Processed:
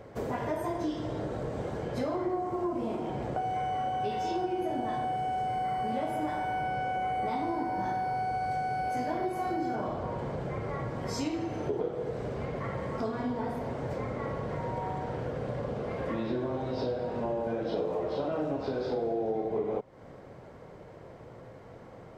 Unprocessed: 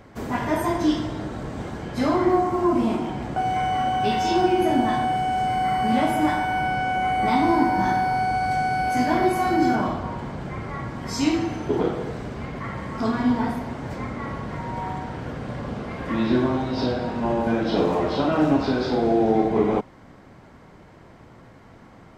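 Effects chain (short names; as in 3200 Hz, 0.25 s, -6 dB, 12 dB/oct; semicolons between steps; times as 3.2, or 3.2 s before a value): graphic EQ 125/250/500 Hz +5/-3/+12 dB; compressor 4:1, threshold -25 dBFS, peak gain reduction 14.5 dB; gain -5.5 dB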